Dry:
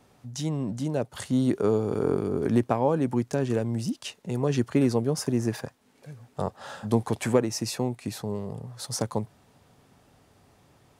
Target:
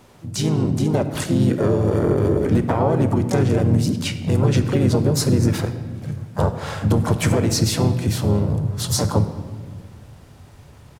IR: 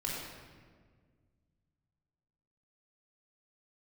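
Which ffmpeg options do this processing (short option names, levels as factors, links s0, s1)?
-filter_complex "[0:a]asplit=3[s0][s1][s2];[s1]asetrate=35002,aresample=44100,atempo=1.25992,volume=0.631[s3];[s2]asetrate=58866,aresample=44100,atempo=0.749154,volume=0.447[s4];[s0][s3][s4]amix=inputs=3:normalize=0,alimiter=limit=0.141:level=0:latency=1:release=97,asubboost=boost=2:cutoff=180,asplit=2[s5][s6];[1:a]atrim=start_sample=2205[s7];[s6][s7]afir=irnorm=-1:irlink=0,volume=0.299[s8];[s5][s8]amix=inputs=2:normalize=0,volume=2"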